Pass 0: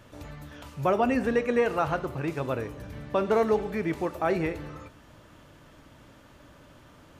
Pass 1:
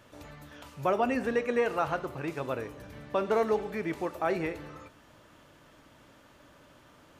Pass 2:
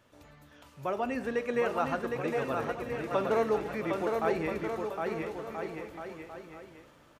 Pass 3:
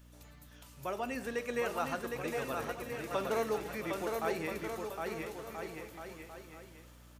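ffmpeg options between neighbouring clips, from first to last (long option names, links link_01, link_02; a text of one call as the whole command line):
ffmpeg -i in.wav -af "lowshelf=frequency=190:gain=-8,volume=-2dB" out.wav
ffmpeg -i in.wav -filter_complex "[0:a]dynaudnorm=framelen=260:gausssize=9:maxgain=6dB,asplit=2[link_01][link_02];[link_02]aecho=0:1:760|1330|1758|2078|2319:0.631|0.398|0.251|0.158|0.1[link_03];[link_01][link_03]amix=inputs=2:normalize=0,volume=-7.5dB" out.wav
ffmpeg -i in.wav -af "crystalizer=i=3.5:c=0,aeval=exprs='val(0)+0.00316*(sin(2*PI*60*n/s)+sin(2*PI*2*60*n/s)/2+sin(2*PI*3*60*n/s)/3+sin(2*PI*4*60*n/s)/4+sin(2*PI*5*60*n/s)/5)':channel_layout=same,volume=-6dB" out.wav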